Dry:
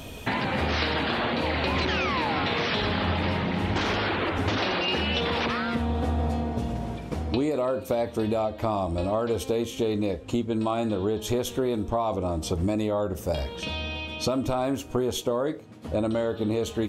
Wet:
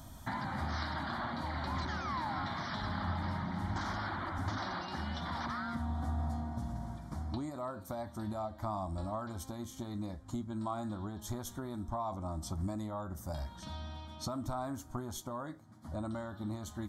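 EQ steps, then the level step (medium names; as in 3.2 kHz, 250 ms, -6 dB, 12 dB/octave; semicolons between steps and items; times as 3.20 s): static phaser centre 1.1 kHz, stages 4; -7.5 dB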